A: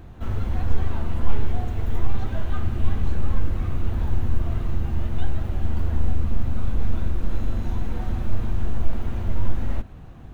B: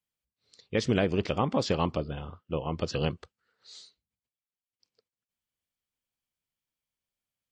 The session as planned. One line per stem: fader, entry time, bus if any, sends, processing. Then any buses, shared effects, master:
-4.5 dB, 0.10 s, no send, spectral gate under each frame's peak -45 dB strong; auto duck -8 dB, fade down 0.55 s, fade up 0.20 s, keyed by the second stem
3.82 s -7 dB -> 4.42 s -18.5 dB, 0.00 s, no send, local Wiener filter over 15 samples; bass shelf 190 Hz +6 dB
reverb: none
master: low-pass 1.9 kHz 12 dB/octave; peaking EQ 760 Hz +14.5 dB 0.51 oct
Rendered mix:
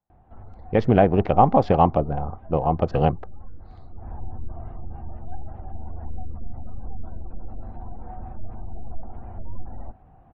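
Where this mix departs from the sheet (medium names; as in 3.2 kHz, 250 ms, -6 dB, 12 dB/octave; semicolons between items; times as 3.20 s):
stem A -4.5 dB -> -11.5 dB; stem B -7.0 dB -> +5.0 dB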